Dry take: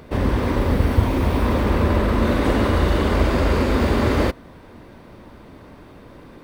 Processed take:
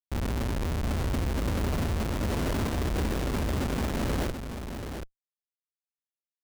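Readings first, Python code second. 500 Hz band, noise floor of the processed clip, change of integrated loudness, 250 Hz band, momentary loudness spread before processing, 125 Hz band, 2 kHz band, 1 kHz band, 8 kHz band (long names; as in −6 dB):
−12.5 dB, below −85 dBFS, −10.5 dB, −10.5 dB, 2 LU, −9.0 dB, −10.5 dB, −11.5 dB, −0.5 dB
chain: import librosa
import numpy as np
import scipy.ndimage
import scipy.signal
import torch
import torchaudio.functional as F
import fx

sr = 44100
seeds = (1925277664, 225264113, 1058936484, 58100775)

y = fx.schmitt(x, sr, flips_db=-19.0)
y = y + 10.0 ** (-7.5 / 20.0) * np.pad(y, (int(733 * sr / 1000.0), 0))[:len(y)]
y = y * 10.0 ** (-8.5 / 20.0)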